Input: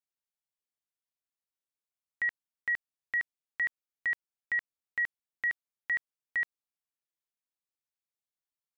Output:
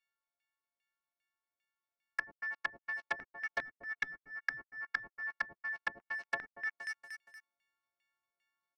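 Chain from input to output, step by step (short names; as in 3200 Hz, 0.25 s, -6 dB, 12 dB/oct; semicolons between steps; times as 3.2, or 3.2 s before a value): frequency quantiser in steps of 4 st; limiter -31 dBFS, peak gain reduction 10 dB; tilt shelf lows -5.5 dB, about 1200 Hz; compressor 6:1, threshold -46 dBFS, peak gain reduction 13 dB; LFO low-pass saw down 2.5 Hz 620–2400 Hz; sample leveller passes 5; feedback echo 0.235 s, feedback 41%, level -12 dB; treble ducked by the level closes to 350 Hz, closed at -36.5 dBFS; vocal rider within 3 dB 0.5 s; core saturation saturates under 1300 Hz; gain +12 dB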